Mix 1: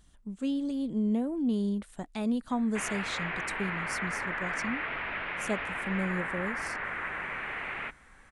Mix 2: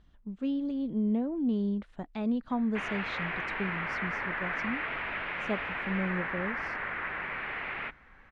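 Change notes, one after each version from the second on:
speech: add air absorption 250 m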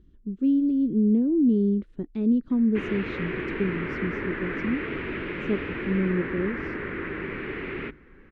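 speech -6.5 dB; master: add resonant low shelf 520 Hz +11.5 dB, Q 3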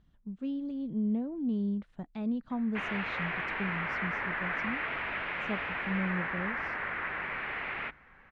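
speech: add bell 150 Hz +8 dB 1.3 oct; master: add resonant low shelf 520 Hz -11.5 dB, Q 3

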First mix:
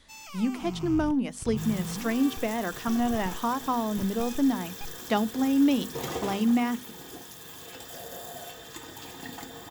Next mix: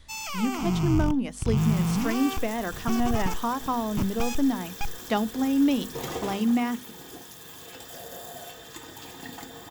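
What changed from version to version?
first sound +10.5 dB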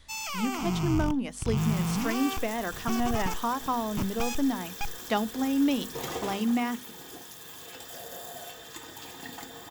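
master: add low shelf 400 Hz -4.5 dB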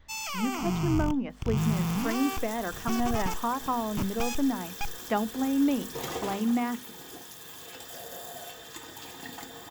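speech: add LPF 2000 Hz 12 dB/oct

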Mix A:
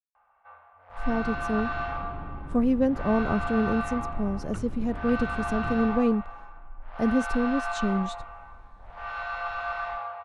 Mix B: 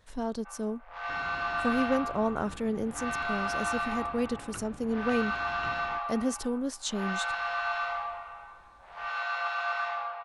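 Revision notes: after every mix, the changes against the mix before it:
speech: entry -0.90 s; master: add tilt +3 dB/oct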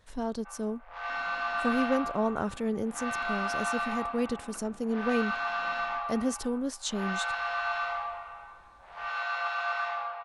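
second sound: add rippled Chebyshev high-pass 170 Hz, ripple 9 dB

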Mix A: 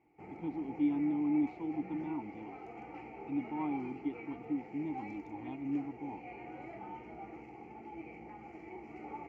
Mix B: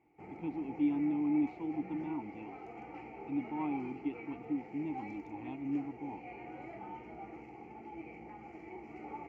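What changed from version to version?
speech: remove Butterworth band-stop 2600 Hz, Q 7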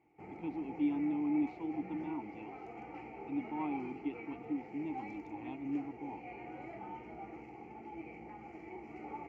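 speech: add tone controls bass -5 dB, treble +4 dB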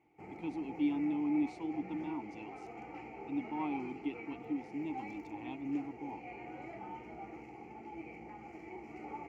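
speech: remove air absorption 220 m; master: add high shelf 6000 Hz +11 dB

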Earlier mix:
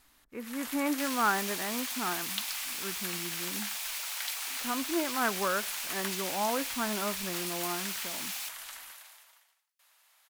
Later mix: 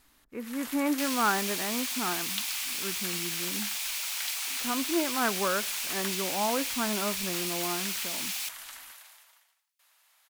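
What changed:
speech: add low shelf 400 Hz +10 dB; second sound +5.0 dB; master: add low shelf 240 Hz -8.5 dB

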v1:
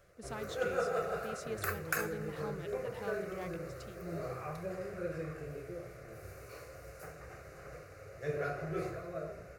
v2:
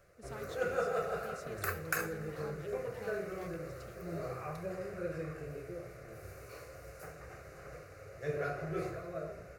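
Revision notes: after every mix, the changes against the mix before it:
speech -6.0 dB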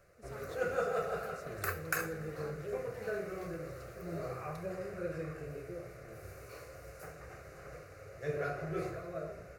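speech -5.0 dB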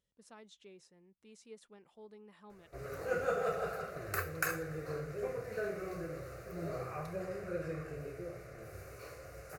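background: entry +2.50 s

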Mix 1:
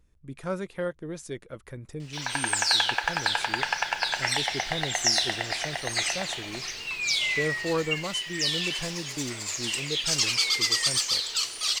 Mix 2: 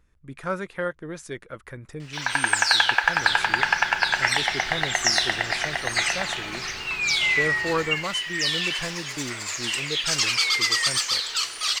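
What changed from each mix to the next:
second sound +9.5 dB; master: add bell 1500 Hz +8.5 dB 1.6 oct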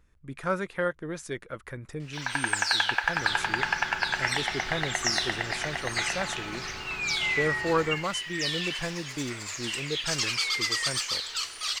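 first sound -6.0 dB

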